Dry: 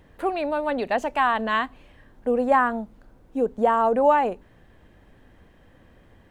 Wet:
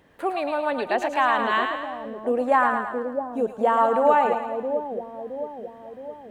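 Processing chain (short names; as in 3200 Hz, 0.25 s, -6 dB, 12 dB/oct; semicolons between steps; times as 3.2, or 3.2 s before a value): HPF 250 Hz 6 dB/oct; split-band echo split 690 Hz, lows 0.668 s, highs 0.109 s, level -5 dB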